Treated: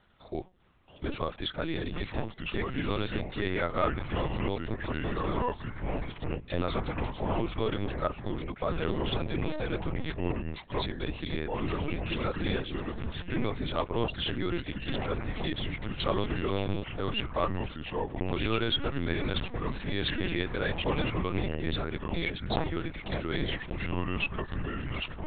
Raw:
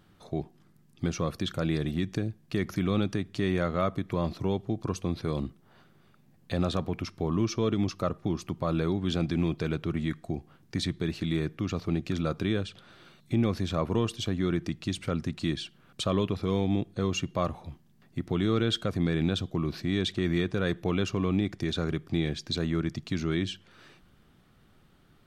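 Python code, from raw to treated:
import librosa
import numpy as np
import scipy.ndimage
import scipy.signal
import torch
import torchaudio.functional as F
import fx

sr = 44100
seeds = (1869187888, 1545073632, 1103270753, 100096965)

y = fx.highpass(x, sr, hz=500.0, slope=6)
y = fx.echo_pitch(y, sr, ms=626, semitones=-4, count=3, db_per_echo=-3.0)
y = fx.lpc_vocoder(y, sr, seeds[0], excitation='pitch_kept', order=10)
y = F.gain(torch.from_numpy(y), 2.0).numpy()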